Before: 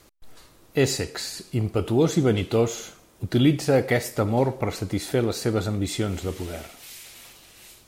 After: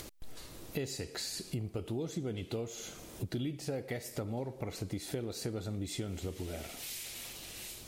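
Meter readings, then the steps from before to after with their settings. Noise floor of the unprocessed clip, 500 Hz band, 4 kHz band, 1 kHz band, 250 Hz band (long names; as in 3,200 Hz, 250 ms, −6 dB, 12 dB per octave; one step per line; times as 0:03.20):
−55 dBFS, −16.0 dB, −9.5 dB, −17.5 dB, −15.0 dB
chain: downward compressor 6 to 1, threshold −35 dBFS, peak gain reduction 19.5 dB
parametric band 1,200 Hz −5.5 dB 1.4 octaves
upward compression, threshold −39 dBFS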